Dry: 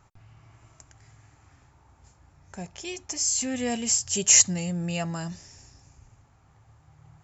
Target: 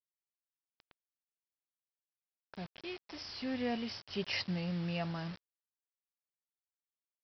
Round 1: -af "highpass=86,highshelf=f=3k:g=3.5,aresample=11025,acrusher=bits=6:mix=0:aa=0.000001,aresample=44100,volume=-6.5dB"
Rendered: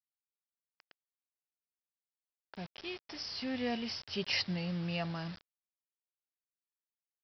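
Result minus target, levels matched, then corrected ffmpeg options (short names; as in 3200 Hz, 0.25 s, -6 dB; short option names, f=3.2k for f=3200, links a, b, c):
8000 Hz band +3.5 dB
-af "highpass=86,highshelf=f=3k:g=-3.5,aresample=11025,acrusher=bits=6:mix=0:aa=0.000001,aresample=44100,volume=-6.5dB"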